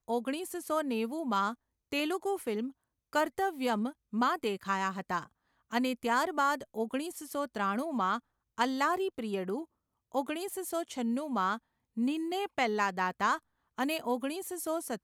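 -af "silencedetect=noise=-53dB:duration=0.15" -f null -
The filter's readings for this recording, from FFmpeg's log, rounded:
silence_start: 1.55
silence_end: 1.92 | silence_duration: 0.38
silence_start: 2.72
silence_end: 3.13 | silence_duration: 0.41
silence_start: 3.93
silence_end: 4.13 | silence_duration: 0.20
silence_start: 5.27
silence_end: 5.70 | silence_duration: 0.43
silence_start: 8.20
silence_end: 8.58 | silence_duration: 0.38
silence_start: 9.65
silence_end: 10.12 | silence_duration: 0.47
silence_start: 11.58
silence_end: 11.97 | silence_duration: 0.38
silence_start: 13.39
silence_end: 13.78 | silence_duration: 0.39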